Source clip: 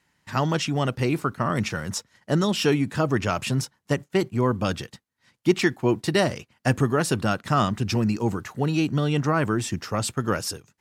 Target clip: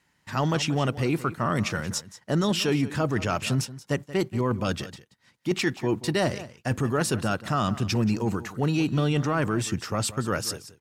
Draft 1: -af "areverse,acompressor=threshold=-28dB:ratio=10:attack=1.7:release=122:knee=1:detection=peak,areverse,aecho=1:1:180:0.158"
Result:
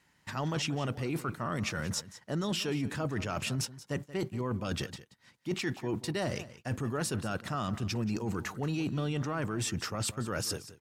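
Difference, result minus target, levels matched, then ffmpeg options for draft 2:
downward compressor: peak gain reduction +9 dB
-af "areverse,acompressor=threshold=-18dB:ratio=10:attack=1.7:release=122:knee=1:detection=peak,areverse,aecho=1:1:180:0.158"

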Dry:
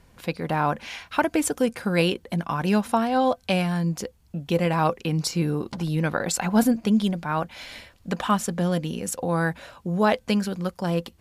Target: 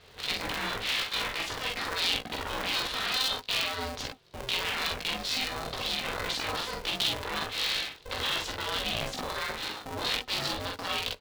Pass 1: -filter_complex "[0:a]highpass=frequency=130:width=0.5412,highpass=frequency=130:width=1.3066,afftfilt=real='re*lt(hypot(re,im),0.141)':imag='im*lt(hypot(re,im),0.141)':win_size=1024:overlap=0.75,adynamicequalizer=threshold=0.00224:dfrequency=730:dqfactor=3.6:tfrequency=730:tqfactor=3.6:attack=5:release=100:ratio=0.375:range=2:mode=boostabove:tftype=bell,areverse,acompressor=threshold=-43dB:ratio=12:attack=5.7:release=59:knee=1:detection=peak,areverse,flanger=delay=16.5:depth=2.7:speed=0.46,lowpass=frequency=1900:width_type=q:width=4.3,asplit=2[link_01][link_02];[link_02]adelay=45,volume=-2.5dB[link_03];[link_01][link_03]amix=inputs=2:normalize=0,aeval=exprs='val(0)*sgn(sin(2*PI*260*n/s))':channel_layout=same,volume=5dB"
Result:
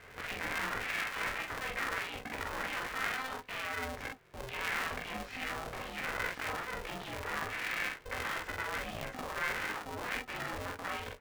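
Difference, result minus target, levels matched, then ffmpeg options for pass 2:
4,000 Hz band −8.5 dB; downward compressor: peak gain reduction +7 dB
-filter_complex "[0:a]highpass=frequency=130:width=0.5412,highpass=frequency=130:width=1.3066,afftfilt=real='re*lt(hypot(re,im),0.141)':imag='im*lt(hypot(re,im),0.141)':win_size=1024:overlap=0.75,adynamicequalizer=threshold=0.00224:dfrequency=730:dqfactor=3.6:tfrequency=730:tqfactor=3.6:attack=5:release=100:ratio=0.375:range=2:mode=boostabove:tftype=bell,areverse,acompressor=threshold=-35.5dB:ratio=12:attack=5.7:release=59:knee=1:detection=peak,areverse,flanger=delay=16.5:depth=2.7:speed=0.46,lowpass=frequency=3800:width_type=q:width=4.3,asplit=2[link_01][link_02];[link_02]adelay=45,volume=-2.5dB[link_03];[link_01][link_03]amix=inputs=2:normalize=0,aeval=exprs='val(0)*sgn(sin(2*PI*260*n/s))':channel_layout=same,volume=5dB"

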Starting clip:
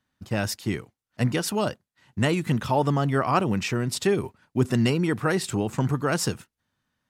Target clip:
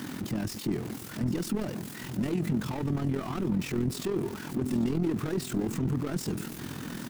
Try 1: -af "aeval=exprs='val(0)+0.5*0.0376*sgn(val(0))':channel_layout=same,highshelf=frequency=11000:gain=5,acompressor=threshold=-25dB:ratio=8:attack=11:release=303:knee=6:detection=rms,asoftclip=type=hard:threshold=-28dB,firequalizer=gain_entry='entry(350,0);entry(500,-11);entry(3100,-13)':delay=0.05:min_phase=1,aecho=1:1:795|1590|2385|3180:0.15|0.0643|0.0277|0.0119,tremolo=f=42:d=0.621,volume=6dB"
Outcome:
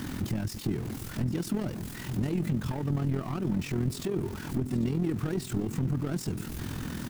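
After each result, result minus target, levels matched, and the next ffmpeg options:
downward compressor: peak gain reduction +6.5 dB; 125 Hz band +2.5 dB
-af "aeval=exprs='val(0)+0.5*0.0376*sgn(val(0))':channel_layout=same,highshelf=frequency=11000:gain=5,acompressor=threshold=-16.5dB:ratio=8:attack=11:release=303:knee=6:detection=rms,asoftclip=type=hard:threshold=-28dB,firequalizer=gain_entry='entry(350,0);entry(500,-11);entry(3100,-13)':delay=0.05:min_phase=1,aecho=1:1:795|1590|2385|3180:0.15|0.0643|0.0277|0.0119,tremolo=f=42:d=0.621,volume=6dB"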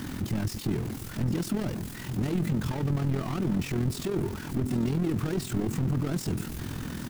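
125 Hz band +2.5 dB
-af "aeval=exprs='val(0)+0.5*0.0376*sgn(val(0))':channel_layout=same,highpass=160,highshelf=frequency=11000:gain=5,acompressor=threshold=-16.5dB:ratio=8:attack=11:release=303:knee=6:detection=rms,asoftclip=type=hard:threshold=-28dB,firequalizer=gain_entry='entry(350,0);entry(500,-11);entry(3100,-13)':delay=0.05:min_phase=1,aecho=1:1:795|1590|2385|3180:0.15|0.0643|0.0277|0.0119,tremolo=f=42:d=0.621,volume=6dB"

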